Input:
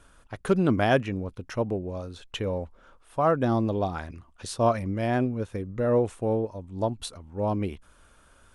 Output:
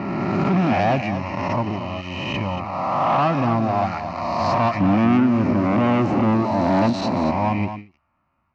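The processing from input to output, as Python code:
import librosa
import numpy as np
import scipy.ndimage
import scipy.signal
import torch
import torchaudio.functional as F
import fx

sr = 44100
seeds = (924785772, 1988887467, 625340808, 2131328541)

y = fx.spec_swells(x, sr, rise_s=2.0)
y = fx.dereverb_blind(y, sr, rt60_s=0.5)
y = fx.peak_eq(y, sr, hz=280.0, db=15.0, octaves=2.1, at=(4.8, 7.31))
y = fx.env_lowpass(y, sr, base_hz=2000.0, full_db=-14.5)
y = fx.leveller(y, sr, passes=3)
y = fx.fixed_phaser(y, sr, hz=2300.0, stages=8)
y = 10.0 ** (-12.5 / 20.0) * np.tanh(y / 10.0 ** (-12.5 / 20.0))
y = fx.bandpass_edges(y, sr, low_hz=110.0, high_hz=4900.0)
y = fx.air_absorb(y, sr, metres=78.0)
y = y + 10.0 ** (-10.0 / 20.0) * np.pad(y, (int(231 * sr / 1000.0), 0))[:len(y)]
y = fx.end_taper(y, sr, db_per_s=190.0)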